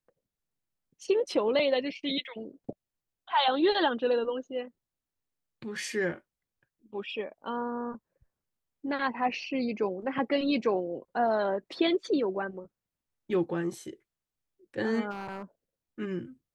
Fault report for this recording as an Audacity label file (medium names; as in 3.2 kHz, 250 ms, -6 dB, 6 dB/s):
15.100000	15.420000	clipped -33.5 dBFS